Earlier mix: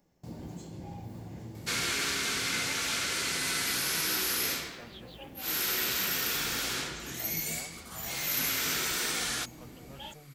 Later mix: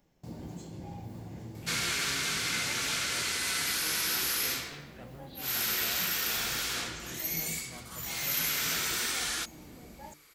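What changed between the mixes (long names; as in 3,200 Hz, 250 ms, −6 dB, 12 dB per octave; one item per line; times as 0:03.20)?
speech: entry −1.65 s
second sound: add low-shelf EQ 310 Hz −11 dB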